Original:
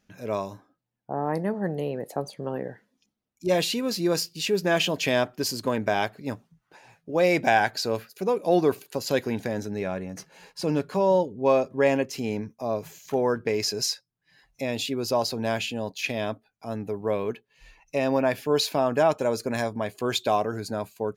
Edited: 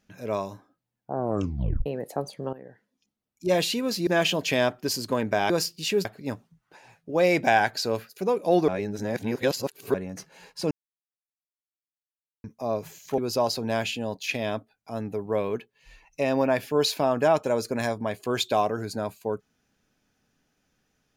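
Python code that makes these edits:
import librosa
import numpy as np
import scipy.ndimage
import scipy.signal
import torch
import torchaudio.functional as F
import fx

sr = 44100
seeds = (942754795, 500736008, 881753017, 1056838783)

y = fx.edit(x, sr, fx.tape_stop(start_s=1.12, length_s=0.74),
    fx.fade_in_from(start_s=2.53, length_s=0.96, floor_db=-16.0),
    fx.move(start_s=4.07, length_s=0.55, to_s=6.05),
    fx.reverse_span(start_s=8.68, length_s=1.26),
    fx.silence(start_s=10.71, length_s=1.73),
    fx.cut(start_s=13.18, length_s=1.75), tone=tone)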